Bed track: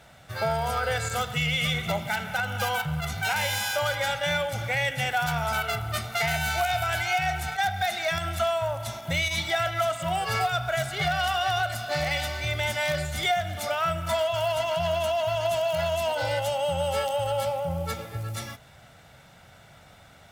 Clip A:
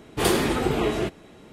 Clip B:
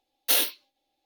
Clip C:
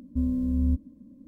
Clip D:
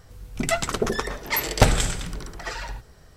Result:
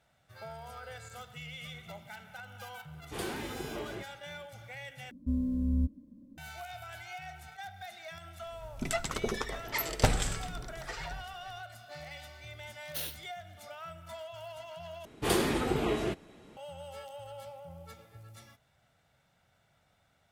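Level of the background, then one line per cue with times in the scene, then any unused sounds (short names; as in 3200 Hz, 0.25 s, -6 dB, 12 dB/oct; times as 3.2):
bed track -18.5 dB
2.94 add A -16.5 dB
5.11 replace with C -4.5 dB
8.42 add D -9 dB
12.66 add B -16 dB
15.05 replace with A -6.5 dB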